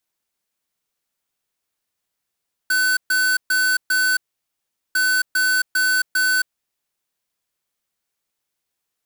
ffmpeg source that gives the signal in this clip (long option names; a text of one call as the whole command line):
ffmpeg -f lavfi -i "aevalsrc='0.126*(2*lt(mod(1510*t,1),0.5)-1)*clip(min(mod(mod(t,2.25),0.4),0.27-mod(mod(t,2.25),0.4))/0.005,0,1)*lt(mod(t,2.25),1.6)':duration=4.5:sample_rate=44100" out.wav